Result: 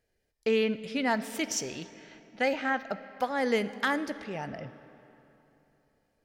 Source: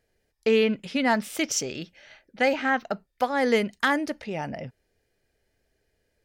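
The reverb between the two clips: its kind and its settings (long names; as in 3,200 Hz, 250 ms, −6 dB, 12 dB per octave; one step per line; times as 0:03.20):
comb and all-pass reverb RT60 3.3 s, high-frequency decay 0.7×, pre-delay 5 ms, DRR 13.5 dB
level −5 dB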